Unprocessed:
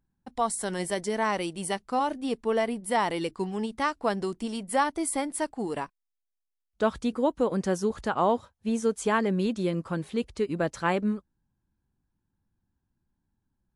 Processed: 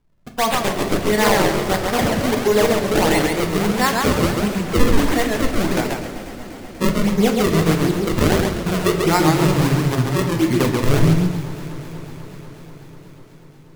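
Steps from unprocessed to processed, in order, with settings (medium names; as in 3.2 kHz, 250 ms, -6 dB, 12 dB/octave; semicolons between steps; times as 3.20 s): pitch bend over the whole clip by -6 st starting unshifted; peaking EQ 2.1 kHz +10 dB 0.43 oct; in parallel at +3 dB: level held to a coarse grid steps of 16 dB; on the sum: decimation with a swept rate 33×, swing 160% 1.5 Hz; on a send: echo whose repeats swap between lows and highs 122 ms, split 1.6 kHz, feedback 89%, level -14 dB; on the sum: simulated room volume 68 m³, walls mixed, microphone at 0.41 m; modulated delay 135 ms, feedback 36%, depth 185 cents, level -3.5 dB; trim +3 dB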